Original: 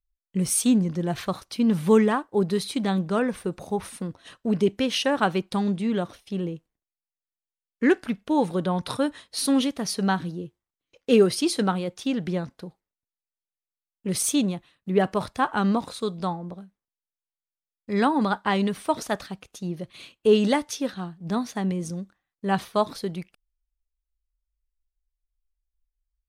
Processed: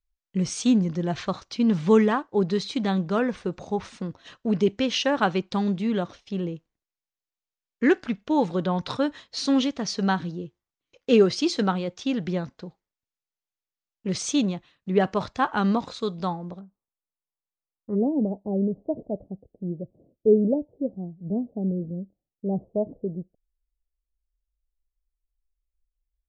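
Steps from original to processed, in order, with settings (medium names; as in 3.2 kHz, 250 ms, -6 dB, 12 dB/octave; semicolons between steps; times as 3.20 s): steep low-pass 7.2 kHz 48 dB/octave, from 16.59 s 1.3 kHz, from 17.94 s 640 Hz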